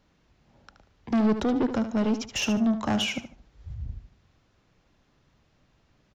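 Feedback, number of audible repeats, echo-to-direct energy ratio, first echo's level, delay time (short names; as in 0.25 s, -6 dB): 25%, 3, -9.5 dB, -10.0 dB, 74 ms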